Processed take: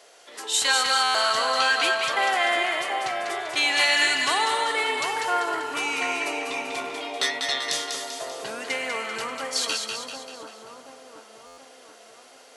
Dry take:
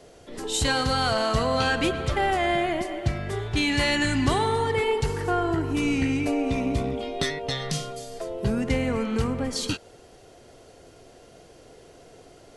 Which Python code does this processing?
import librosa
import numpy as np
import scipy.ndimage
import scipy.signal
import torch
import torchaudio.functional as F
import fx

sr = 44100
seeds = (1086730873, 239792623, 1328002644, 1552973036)

p1 = scipy.signal.sosfilt(scipy.signal.butter(2, 900.0, 'highpass', fs=sr, output='sos'), x)
p2 = p1 + fx.echo_split(p1, sr, split_hz=1200.0, low_ms=730, high_ms=195, feedback_pct=52, wet_db=-4.5, dry=0)
p3 = fx.buffer_glitch(p2, sr, at_s=(1.03, 11.46), block=512, repeats=9)
y = F.gain(torch.from_numpy(p3), 4.5).numpy()